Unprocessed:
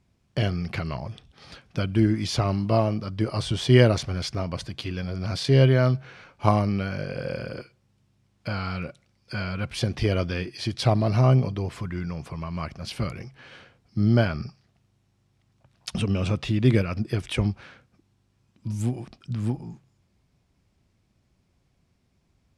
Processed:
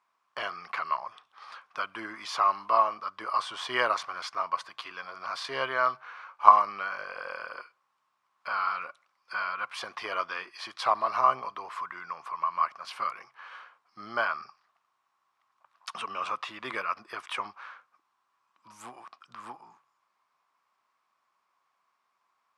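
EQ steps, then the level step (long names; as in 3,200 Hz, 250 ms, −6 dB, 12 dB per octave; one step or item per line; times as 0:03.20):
high-pass with resonance 1,100 Hz, resonance Q 5.7
high-shelf EQ 2,300 Hz −9.5 dB
0.0 dB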